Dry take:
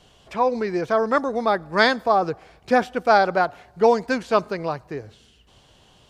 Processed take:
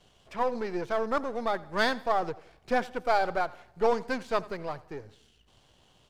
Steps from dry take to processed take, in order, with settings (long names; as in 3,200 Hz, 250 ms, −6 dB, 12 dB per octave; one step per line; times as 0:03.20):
gain on one half-wave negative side −7 dB
repeating echo 86 ms, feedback 41%, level −20.5 dB
level −5.5 dB